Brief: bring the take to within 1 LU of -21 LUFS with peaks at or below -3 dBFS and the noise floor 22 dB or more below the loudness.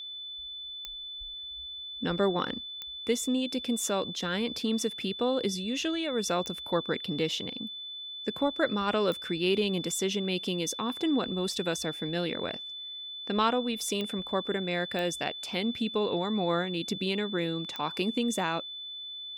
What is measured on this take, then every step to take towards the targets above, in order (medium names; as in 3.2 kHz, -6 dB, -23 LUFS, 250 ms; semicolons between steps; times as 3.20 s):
clicks found 7; steady tone 3.5 kHz; tone level -38 dBFS; loudness -31.0 LUFS; peak level -13.5 dBFS; loudness target -21.0 LUFS
-> de-click; band-stop 3.5 kHz, Q 30; trim +10 dB